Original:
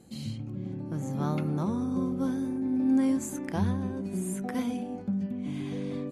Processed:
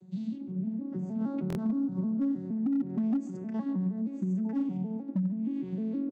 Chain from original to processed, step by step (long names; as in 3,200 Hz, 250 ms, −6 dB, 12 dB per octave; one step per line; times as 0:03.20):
vocoder with an arpeggio as carrier minor triad, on F#3, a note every 156 ms
low-shelf EQ 200 Hz +11.5 dB
downward compressor 2.5 to 1, threshold −29 dBFS, peak gain reduction 8.5 dB
hard clipping −23.5 dBFS, distortion −29 dB
slap from a distant wall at 24 metres, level −16 dB
buffer that repeats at 0:01.48, samples 1,024, times 2